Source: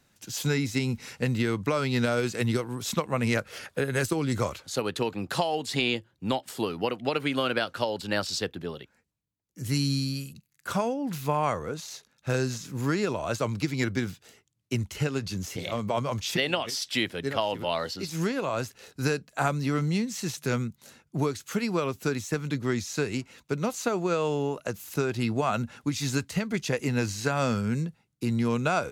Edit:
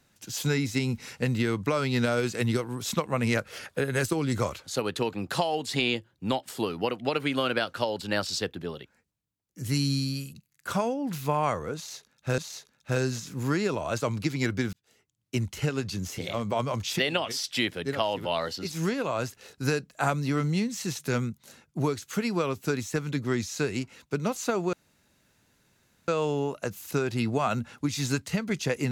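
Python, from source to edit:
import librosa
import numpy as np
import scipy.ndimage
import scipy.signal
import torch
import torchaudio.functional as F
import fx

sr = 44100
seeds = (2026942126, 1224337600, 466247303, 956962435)

y = fx.edit(x, sr, fx.repeat(start_s=11.76, length_s=0.62, count=2),
    fx.fade_in_span(start_s=14.11, length_s=0.62),
    fx.insert_room_tone(at_s=24.11, length_s=1.35), tone=tone)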